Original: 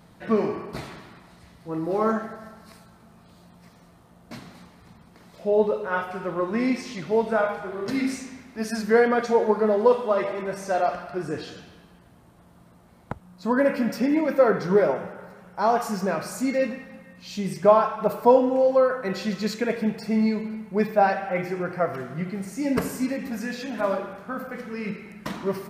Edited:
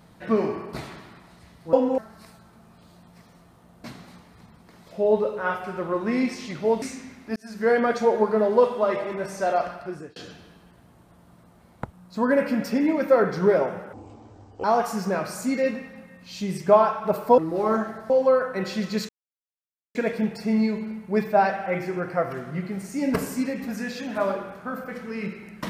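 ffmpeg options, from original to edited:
-filter_complex "[0:a]asplit=11[a][b][c][d][e][f][g][h][i][j][k];[a]atrim=end=1.732[l];[b]atrim=start=18.338:end=18.592[m];[c]atrim=start=2.448:end=7.292[n];[d]atrim=start=8.098:end=8.64,asetpts=PTS-STARTPTS,afade=t=out:st=0.538:d=0.004:c=hsin[o];[e]atrim=start=8.64:end=11.44,asetpts=PTS-STARTPTS,afade=t=in:d=0.45,afade=t=out:st=2.23:d=0.57:c=qsin[p];[f]atrim=start=11.44:end=15.214,asetpts=PTS-STARTPTS,afade=t=in:d=0.004:c=hsin[q];[g]atrim=start=15.21:end=15.6,asetpts=PTS-STARTPTS,asetrate=24255,aresample=44100[r];[h]atrim=start=15.596:end=18.342[s];[i]atrim=start=1.728:end=2.452[t];[j]atrim=start=18.588:end=19.58,asetpts=PTS-STARTPTS,afade=t=out:st=0.988:d=0.004:c=hsin,apad=pad_dur=0.86[u];[k]atrim=start=19.58,asetpts=PTS-STARTPTS,afade=t=in:d=0.004:c=hsin[v];[l][m]acrossfade=d=0.004:c1=hsin:c2=hsin[w];[w][n]acrossfade=d=0.004:c1=hsin:c2=hsin[x];[o][p][q]concat=n=3:v=0:a=1[y];[x][y]acrossfade=d=0.004:c1=hsin:c2=hsin[z];[z][r]acrossfade=d=0.004:c1=hsin:c2=hsin[aa];[aa][s]acrossfade=d=0.004:c1=hsin:c2=hsin[ab];[ab][t]acrossfade=d=0.004:c1=hsin:c2=hsin[ac];[u][v]concat=n=2:v=0:a=1[ad];[ac][ad]acrossfade=d=0.004:c1=hsin:c2=hsin"

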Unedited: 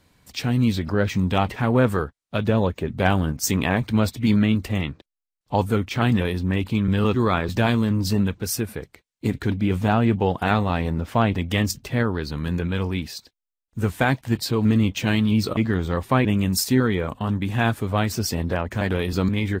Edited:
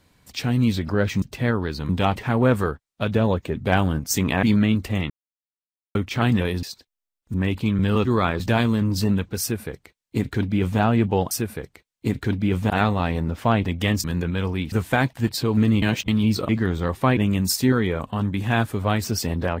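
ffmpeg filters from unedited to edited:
-filter_complex "[0:a]asplit=14[a][b][c][d][e][f][g][h][i][j][k][l][m][n];[a]atrim=end=1.222[o];[b]atrim=start=11.738:end=12.412[p];[c]atrim=start=1.218:end=3.762[q];[d]atrim=start=4.228:end=4.9,asetpts=PTS-STARTPTS,afade=t=out:st=0.668:d=0.004:c=hsin[r];[e]atrim=start=4.9:end=5.75,asetpts=PTS-STARTPTS,volume=0[s];[f]atrim=start=5.75:end=6.432,asetpts=PTS-STARTPTS,afade=t=in:d=0.004:c=hsin[t];[g]atrim=start=13.088:end=13.802[u];[h]atrim=start=6.428:end=10.402[v];[i]atrim=start=8.498:end=9.892[w];[j]atrim=start=10.398:end=11.742[x];[k]atrim=start=12.408:end=13.092[y];[l]atrim=start=13.798:end=14.902[z];[m]atrim=start=14.898:end=15.162,asetpts=PTS-STARTPTS,areverse[aa];[n]atrim=start=15.158[ab];[o][p]acrossfade=d=0.004:c1=hsin:c2=hsin[ac];[ac][q]acrossfade=d=0.004:c1=hsin:c2=hsin[ad];[r][s][t]concat=n=3:v=0:a=1[ae];[ad][ae]acrossfade=d=0.004:c1=hsin:c2=hsin[af];[af][u]acrossfade=d=0.004:c1=hsin:c2=hsin[ag];[ag][v]acrossfade=d=0.004:c1=hsin:c2=hsin[ah];[ah][w]acrossfade=d=0.004:c1=hsin:c2=hsin[ai];[ai][x]acrossfade=d=0.004:c1=hsin:c2=hsin[aj];[aj][y]acrossfade=d=0.004:c1=hsin:c2=hsin[ak];[ak][z]acrossfade=d=0.004:c1=hsin:c2=hsin[al];[al][aa]acrossfade=d=0.004:c1=hsin:c2=hsin[am];[am][ab]acrossfade=d=0.004:c1=hsin:c2=hsin"

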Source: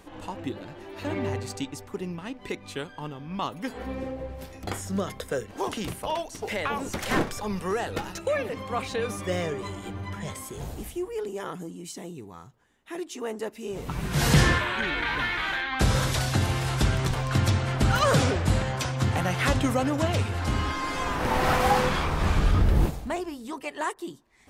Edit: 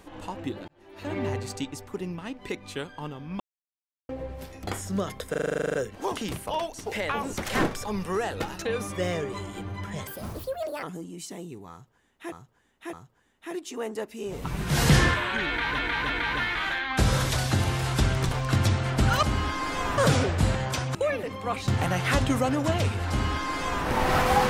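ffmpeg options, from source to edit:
-filter_complex "[0:a]asplit=26[a][b][c][d][e][f][g][h][i][j][k][l][m][n][o][p][q][r][s][t][u][v][w][x][y][z];[a]atrim=end=0.68,asetpts=PTS-STARTPTS,afade=t=out:st=0.676:d=0.004:c=hsin[aa];[b]atrim=start=0.68:end=3.4,asetpts=PTS-STARTPTS,afade=t=in:d=0.54,afade=t=out:st=2.716:d=0.004:c=hsin[ab];[c]atrim=start=3.4:end=4.09,asetpts=PTS-STARTPTS,volume=0[ac];[d]atrim=start=4.09:end=5.342,asetpts=PTS-STARTPTS,afade=t=in:d=0.004:c=hsin[ad];[e]atrim=start=5.298:end=5.342[ae];[f]atrim=start=5.298:end=5.342[af];[g]atrim=start=5.298:end=5.342[ag];[h]atrim=start=5.298:end=5.342[ah];[i]atrim=start=5.298:end=5.342[ai];[j]atrim=start=5.298:end=5.342[aj];[k]atrim=start=5.298:end=5.342[ak];[l]atrim=start=5.298:end=5.342[al];[m]atrim=start=5.298:end=5.342[am];[n]atrim=start=5.298:end=5.342[an];[o]atrim=start=5.298:end=8.212[ao];[p]atrim=start=8.938:end=10.364[ap];[q]atrim=start=10.36:end=11.49,asetpts=PTS-STARTPTS,asetrate=65709,aresample=44100[aq];[r]atrim=start=11.486:end=12.982[ar];[s]atrim=start=12.368:end=12.982[as];[t]atrim=start=12.368:end=15.232[at];[u]atrim=start=14.918:end=15.232[au];[v]atrim=start=14.918:end=18.052[av];[w]atrim=start=20.438:end=21.192[aw];[x]atrim=start=18.048:end=19.022[ax];[y]atrim=start=8.208:end=8.942[ay];[z]atrim=start=19.018[az];[aa][ab][ac][ad]concat=n=4:v=0:a=1[ba];[ba][ae]acrossfade=d=0.004:c1=hsin:c2=hsin[bb];[bb][af]acrossfade=d=0.004:c1=hsin:c2=hsin[bc];[bc][ag]acrossfade=d=0.004:c1=hsin:c2=hsin[bd];[bd][ah]acrossfade=d=0.004:c1=hsin:c2=hsin[be];[be][ai]acrossfade=d=0.004:c1=hsin:c2=hsin[bf];[bf][aj]acrossfade=d=0.004:c1=hsin:c2=hsin[bg];[bg][ak]acrossfade=d=0.004:c1=hsin:c2=hsin[bh];[bh][al]acrossfade=d=0.004:c1=hsin:c2=hsin[bi];[bi][am]acrossfade=d=0.004:c1=hsin:c2=hsin[bj];[bj][an]acrossfade=d=0.004:c1=hsin:c2=hsin[bk];[bk][ao]acrossfade=d=0.004:c1=hsin:c2=hsin[bl];[bl][ap]acrossfade=d=0.004:c1=hsin:c2=hsin[bm];[bm][aq]acrossfade=d=0.004:c1=hsin:c2=hsin[bn];[bn][ar]acrossfade=d=0.004:c1=hsin:c2=hsin[bo];[bo][as]acrossfade=d=0.004:c1=hsin:c2=hsin[bp];[bp][at]acrossfade=d=0.004:c1=hsin:c2=hsin[bq];[bq][au]acrossfade=d=0.004:c1=hsin:c2=hsin[br];[br][av]acrossfade=d=0.004:c1=hsin:c2=hsin[bs];[bs][aw]acrossfade=d=0.004:c1=hsin:c2=hsin[bt];[bt][ax]acrossfade=d=0.004:c1=hsin:c2=hsin[bu];[bu][ay]acrossfade=d=0.004:c1=hsin:c2=hsin[bv];[bv][az]acrossfade=d=0.004:c1=hsin:c2=hsin"

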